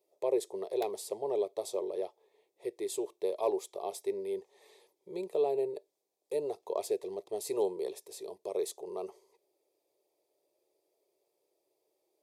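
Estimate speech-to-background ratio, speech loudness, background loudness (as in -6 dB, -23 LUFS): 17.5 dB, -36.0 LUFS, -53.5 LUFS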